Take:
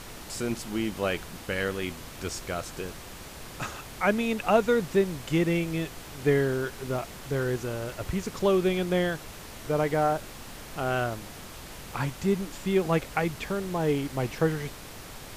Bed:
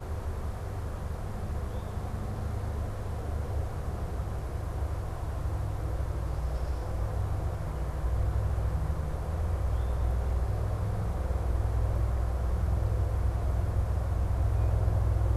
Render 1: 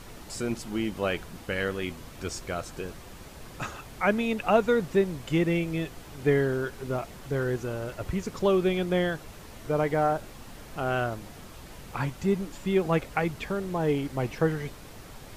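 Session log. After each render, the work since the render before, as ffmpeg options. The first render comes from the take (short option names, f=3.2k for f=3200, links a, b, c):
-af "afftdn=nr=6:nf=-43"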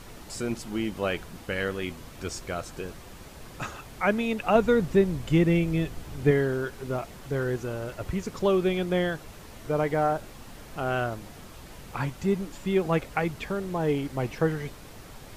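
-filter_complex "[0:a]asettb=1/sr,asplit=3[a][b][c];[a]atrim=end=4.554[d];[b]atrim=start=4.55:end=6.31,asetpts=PTS-STARTPTS,afade=t=in:d=0.004:c=qsin,afade=t=out:st=1.756:d=0.004:c=qsin,lowshelf=f=210:g=8.5[e];[c]atrim=start=6.306[f];[d][e]acrossfade=d=0.004:c1=hsin:c2=qsin[g];[g][f]acrossfade=d=0.004:c1=qsin:c2=hsin"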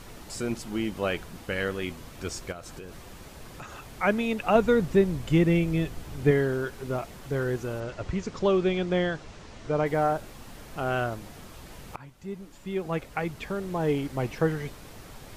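-filter_complex "[0:a]asplit=3[a][b][c];[a]afade=t=out:st=2.51:d=0.02[d];[b]acompressor=threshold=-37dB:ratio=6:attack=3.2:release=140:knee=1:detection=peak,afade=t=in:st=2.51:d=0.02,afade=t=out:st=3.93:d=0.02[e];[c]afade=t=in:st=3.93:d=0.02[f];[d][e][f]amix=inputs=3:normalize=0,asettb=1/sr,asplit=3[g][h][i];[g]atrim=end=7.804[j];[h]atrim=start=7.8:end=9.86,asetpts=PTS-STARTPTS,afade=t=in:d=0.004:c=qsin,afade=t=out:st=2.056:d=0.004:c=qsin,lowpass=f=7.1k:w=0.5412,lowpass=f=7.1k:w=1.3066[k];[i]atrim=start=9.856[l];[j][k]acrossfade=d=0.004:c1=hsin:c2=qsin[m];[m][l]acrossfade=d=0.004:c1=qsin:c2=hsin,asplit=2[n][o];[n]atrim=end=11.96,asetpts=PTS-STARTPTS,afade=t=out:st=11.956:d=0.004:c=hsin:silence=0.1[p];[o]atrim=start=11.96,asetpts=PTS-STARTPTS,afade=t=in:d=1.89:silence=0.1[q];[p][q]concat=n=2:v=0:a=1"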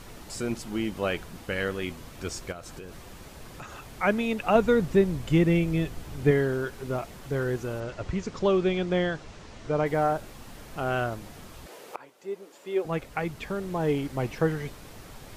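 -filter_complex "[0:a]asettb=1/sr,asplit=3[a][b][c];[a]atrim=end=11.664[d];[b]atrim=start=11.66:end=12.85,asetpts=PTS-STARTPTS,afade=t=in:d=0.004:c=qsin,afade=t=out:st=1.186:d=0.004:c=qsin,highpass=f=440:t=q:w=2.2[e];[c]atrim=start=12.846[f];[d][e]acrossfade=d=0.004:c1=hsin:c2=qsin[g];[g][f]acrossfade=d=0.004:c1=qsin:c2=hsin"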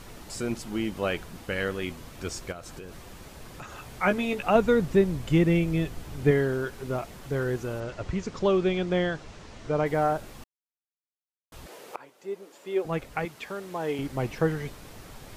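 -filter_complex "[0:a]asettb=1/sr,asplit=3[a][b][c];[a]atrim=end=3.764[d];[b]atrim=start=3.76:end=4.47,asetpts=PTS-STARTPTS,afade=t=in:d=0.004:c=qsin,afade=t=out:st=0.706:d=0.004:c=qsin,asplit=2[e][f];[f]adelay=16,volume=-6dB[g];[e][g]amix=inputs=2:normalize=0,atrim=end_sample=31311[h];[c]atrim=start=4.466[i];[d][h]acrossfade=d=0.004:c1=hsin:c2=qsin[j];[j][i]acrossfade=d=0.004:c1=qsin:c2=hsin,asettb=1/sr,asplit=3[k][l][m];[k]atrim=end=13.254[n];[l]atrim=start=13.25:end=13.99,asetpts=PTS-STARTPTS,afade=t=in:d=0.004:c=qsin,afade=t=out:st=0.736:d=0.004:c=qsin,highpass=f=500:p=1[o];[m]atrim=start=13.986[p];[n][o]acrossfade=d=0.004:c1=hsin:c2=qsin[q];[q][p]acrossfade=d=0.004:c1=qsin:c2=hsin,asplit=3[r][s][t];[r]atrim=end=10.44,asetpts=PTS-STARTPTS,afade=t=out:st=10.436:d=0.004:c=hsin[u];[s]atrim=start=10.44:end=11.52,asetpts=PTS-STARTPTS,volume=0[v];[t]atrim=start=11.52,asetpts=PTS-STARTPTS,afade=t=in:d=0.004:c=hsin[w];[u][v][w]concat=n=3:v=0:a=1"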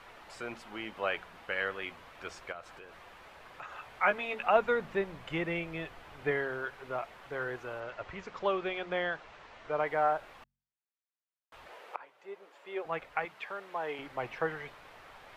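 -filter_complex "[0:a]acrossover=split=570 3200:gain=0.126 1 0.112[a][b][c];[a][b][c]amix=inputs=3:normalize=0,bandreject=f=45.61:t=h:w=4,bandreject=f=91.22:t=h:w=4,bandreject=f=136.83:t=h:w=4,bandreject=f=182.44:t=h:w=4,bandreject=f=228.05:t=h:w=4"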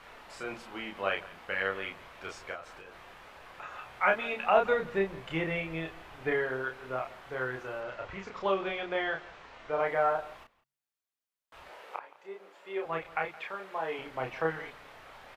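-filter_complex "[0:a]asplit=2[a][b];[b]adelay=31,volume=-3dB[c];[a][c]amix=inputs=2:normalize=0,asplit=2[d][e];[e]adelay=169.1,volume=-19dB,highshelf=f=4k:g=-3.8[f];[d][f]amix=inputs=2:normalize=0"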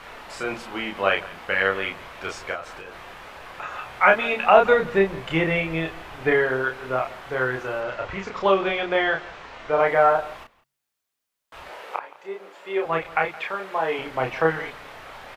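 -af "volume=10dB,alimiter=limit=-2dB:level=0:latency=1"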